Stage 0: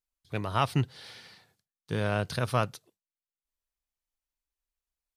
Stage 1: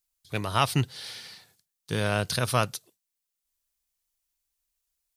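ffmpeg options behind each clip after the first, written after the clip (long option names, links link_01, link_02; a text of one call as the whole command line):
ffmpeg -i in.wav -af "highshelf=frequency=3400:gain=12,volume=1.5dB" out.wav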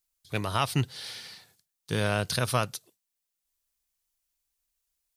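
ffmpeg -i in.wav -af "alimiter=limit=-12dB:level=0:latency=1:release=300" out.wav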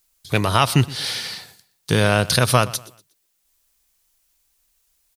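ffmpeg -i in.wav -filter_complex "[0:a]asplit=2[link_01][link_02];[link_02]acompressor=threshold=-34dB:ratio=6,volume=2dB[link_03];[link_01][link_03]amix=inputs=2:normalize=0,aecho=1:1:120|240|360:0.1|0.034|0.0116,volume=7.5dB" out.wav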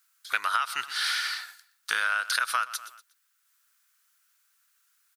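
ffmpeg -i in.wav -af "highpass=frequency=1400:width_type=q:width=5.4,acompressor=threshold=-19dB:ratio=16,volume=-3.5dB" out.wav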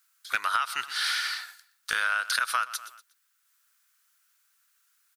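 ffmpeg -i in.wav -af "asoftclip=type=hard:threshold=-14dB" out.wav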